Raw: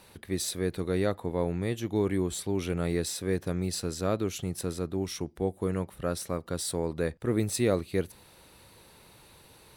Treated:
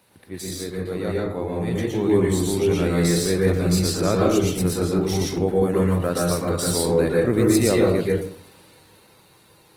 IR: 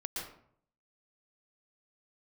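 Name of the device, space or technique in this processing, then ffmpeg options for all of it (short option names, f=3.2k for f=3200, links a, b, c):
far-field microphone of a smart speaker: -filter_complex "[1:a]atrim=start_sample=2205[a];[0:a][a]afir=irnorm=-1:irlink=0,highpass=f=81:w=0.5412,highpass=f=81:w=1.3066,dynaudnorm=f=310:g=13:m=10dB" -ar 48000 -c:a libopus -b:a 20k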